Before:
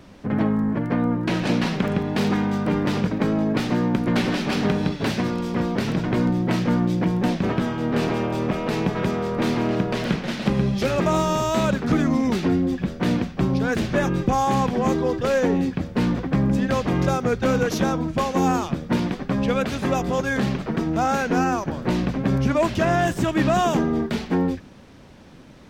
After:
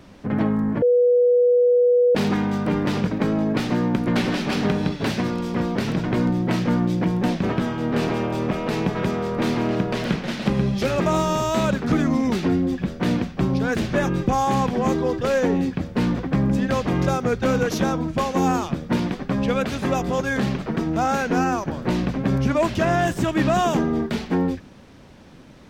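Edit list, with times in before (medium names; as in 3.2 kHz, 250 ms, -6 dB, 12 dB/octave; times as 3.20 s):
0.82–2.15 s: bleep 489 Hz -13 dBFS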